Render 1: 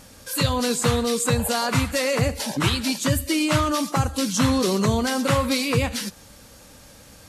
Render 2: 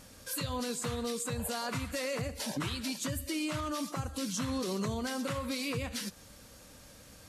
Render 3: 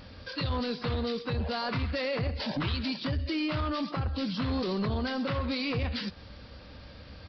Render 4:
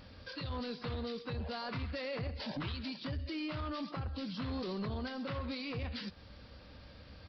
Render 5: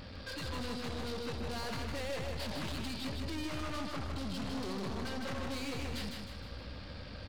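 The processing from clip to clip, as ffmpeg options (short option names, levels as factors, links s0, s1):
-af "alimiter=limit=0.112:level=0:latency=1:release=229,bandreject=f=840:w=14,volume=0.473"
-af "equalizer=f=72:w=1.5:g=8.5,aresample=11025,asoftclip=type=tanh:threshold=0.0335,aresample=44100,volume=1.88"
-af "alimiter=level_in=1.33:limit=0.0631:level=0:latency=1:release=434,volume=0.75,volume=0.501"
-af "aeval=exprs='(tanh(224*val(0)+0.35)-tanh(0.35))/224':c=same,aecho=1:1:155|310|465|620|775|930:0.631|0.284|0.128|0.0575|0.0259|0.0116,volume=2.51"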